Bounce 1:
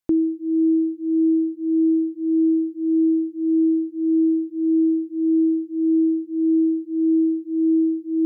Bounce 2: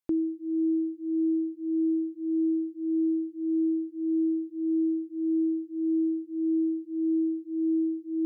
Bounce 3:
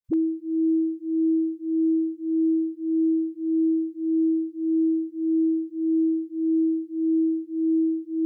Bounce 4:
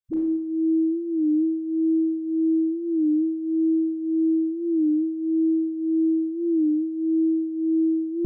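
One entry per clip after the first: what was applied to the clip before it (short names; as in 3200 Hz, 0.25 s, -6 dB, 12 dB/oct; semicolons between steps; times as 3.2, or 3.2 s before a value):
low shelf 430 Hz -4.5 dB; gain -5 dB
dispersion highs, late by 45 ms, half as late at 320 Hz; gain +4 dB
Schroeder reverb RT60 0.86 s, combs from 28 ms, DRR -3 dB; record warp 33 1/3 rpm, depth 100 cents; gain -5 dB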